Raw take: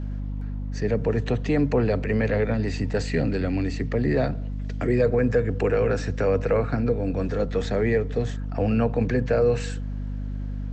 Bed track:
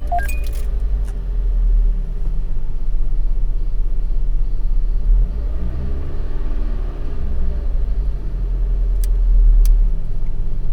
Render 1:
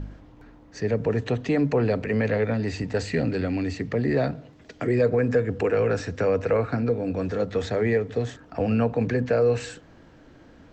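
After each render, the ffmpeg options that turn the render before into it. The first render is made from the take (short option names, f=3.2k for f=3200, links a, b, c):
-af "bandreject=f=50:t=h:w=4,bandreject=f=100:t=h:w=4,bandreject=f=150:t=h:w=4,bandreject=f=200:t=h:w=4,bandreject=f=250:t=h:w=4"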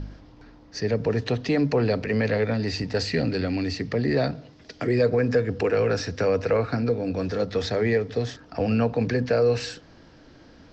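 -af "lowpass=f=5.1k:t=q:w=3.4"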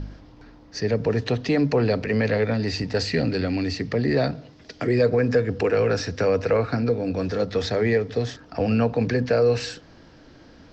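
-af "volume=1.5dB"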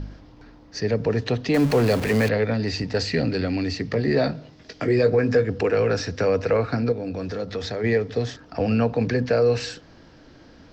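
-filter_complex "[0:a]asettb=1/sr,asplit=3[a][b][c];[a]atrim=end=1.544[d];[b]atrim=start=1.54:end=2.29,asetpts=PTS-STARTPTS,afade=t=in:d=0.004:c=qsin,afade=t=out:st=0.746:d=0.004:c=qsin,aeval=exprs='val(0)+0.5*0.0531*sgn(val(0))':c=same[e];[c]atrim=start=2.286[f];[d][e]acrossfade=d=0.004:c1=hsin:c2=qsin[g];[g][f]acrossfade=d=0.004:c1=qsin:c2=hsin,asettb=1/sr,asplit=3[h][i][j];[h]atrim=end=3.904[k];[i]atrim=start=3.9:end=5.44,asetpts=PTS-STARTPTS,afade=t=in:d=0.004:c=qsin,afade=t=out:st=1.536:d=0.004:c=qsin,asplit=2[l][m];[m]adelay=19,volume=-8dB[n];[l][n]amix=inputs=2:normalize=0,atrim=end_sample=67914[o];[j]atrim=start=5.436[p];[k][o]acrossfade=d=0.004:c1=hsin:c2=qsin[q];[q][p]acrossfade=d=0.004:c1=qsin:c2=hsin,asettb=1/sr,asplit=3[r][s][t];[r]atrim=end=6.924[u];[s]atrim=start=6.92:end=7.84,asetpts=PTS-STARTPTS,afade=t=in:d=0.004:c=qsin,afade=t=out:st=0.916:d=0.004:c=qsin,acompressor=threshold=-28dB:ratio=2:attack=3.2:release=140:knee=1:detection=peak[v];[t]atrim=start=7.836[w];[u][v]acrossfade=d=0.004:c1=hsin:c2=qsin[x];[x][w]acrossfade=d=0.004:c1=qsin:c2=hsin"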